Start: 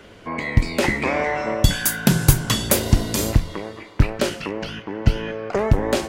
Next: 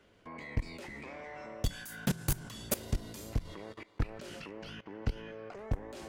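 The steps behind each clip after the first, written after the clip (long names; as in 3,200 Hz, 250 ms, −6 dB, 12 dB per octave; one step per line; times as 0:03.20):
soft clipping −14 dBFS, distortion −9 dB
output level in coarse steps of 19 dB
level −7.5 dB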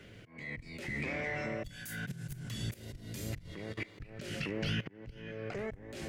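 volume swells 599 ms
octave-band graphic EQ 125/1,000/2,000 Hz +10/−10/+6 dB
level +9 dB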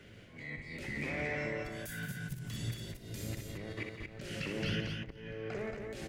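multi-tap delay 61/172/229 ms −6.5/−11/−5 dB
level −2 dB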